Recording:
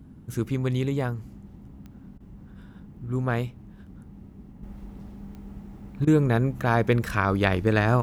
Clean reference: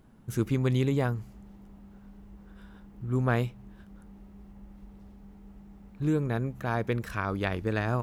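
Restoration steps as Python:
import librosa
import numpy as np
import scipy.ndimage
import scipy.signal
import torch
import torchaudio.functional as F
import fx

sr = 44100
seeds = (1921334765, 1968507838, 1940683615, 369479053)

y = fx.fix_declick_ar(x, sr, threshold=10.0)
y = fx.fix_interpolate(y, sr, at_s=(2.18, 6.05), length_ms=21.0)
y = fx.noise_reduce(y, sr, print_start_s=1.82, print_end_s=2.32, reduce_db=6.0)
y = fx.fix_level(y, sr, at_s=4.63, step_db=-7.5)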